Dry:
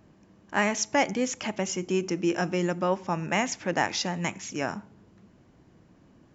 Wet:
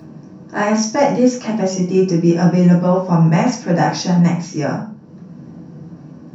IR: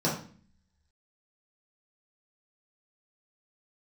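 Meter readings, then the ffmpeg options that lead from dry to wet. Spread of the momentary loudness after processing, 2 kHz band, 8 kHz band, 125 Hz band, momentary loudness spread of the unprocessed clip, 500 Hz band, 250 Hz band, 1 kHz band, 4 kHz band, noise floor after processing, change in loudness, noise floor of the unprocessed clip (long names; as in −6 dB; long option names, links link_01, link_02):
9 LU, +3.0 dB, can't be measured, +20.0 dB, 7 LU, +11.5 dB, +15.5 dB, +9.0 dB, +4.5 dB, −40 dBFS, +12.5 dB, −59 dBFS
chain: -filter_complex "[0:a]acompressor=mode=upward:threshold=-42dB:ratio=2.5[link_01];[1:a]atrim=start_sample=2205,afade=type=out:start_time=0.25:duration=0.01,atrim=end_sample=11466[link_02];[link_01][link_02]afir=irnorm=-1:irlink=0,volume=-4dB"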